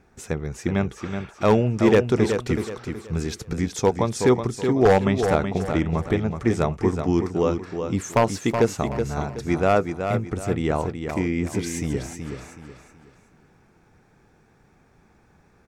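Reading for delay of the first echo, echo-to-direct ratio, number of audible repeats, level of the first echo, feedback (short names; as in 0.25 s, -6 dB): 0.374 s, -6.5 dB, 3, -7.0 dB, 34%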